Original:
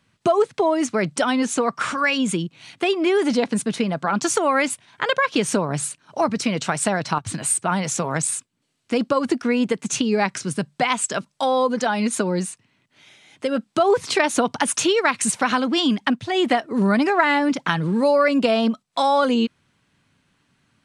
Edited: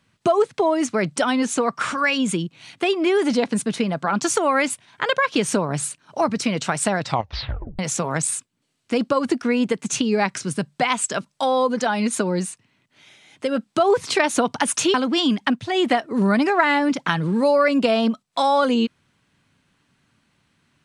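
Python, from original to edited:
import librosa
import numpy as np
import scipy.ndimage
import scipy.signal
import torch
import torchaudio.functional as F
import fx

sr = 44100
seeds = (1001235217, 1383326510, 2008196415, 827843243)

y = fx.edit(x, sr, fx.tape_stop(start_s=7.01, length_s=0.78),
    fx.cut(start_s=14.94, length_s=0.6), tone=tone)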